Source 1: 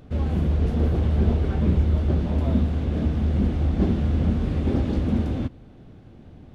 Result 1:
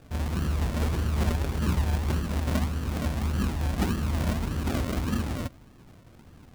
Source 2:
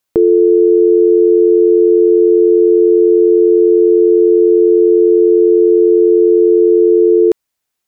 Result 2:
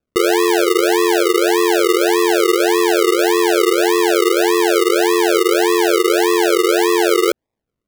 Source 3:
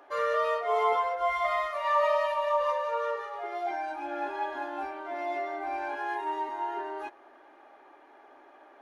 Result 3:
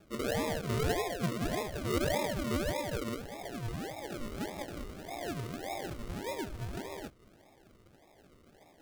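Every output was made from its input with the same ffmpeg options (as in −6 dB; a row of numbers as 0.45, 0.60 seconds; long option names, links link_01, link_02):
-af "acrusher=samples=42:mix=1:aa=0.000001:lfo=1:lforange=25.2:lforate=1.7,volume=-5.5dB"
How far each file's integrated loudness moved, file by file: −5.5, −5.0, −6.0 LU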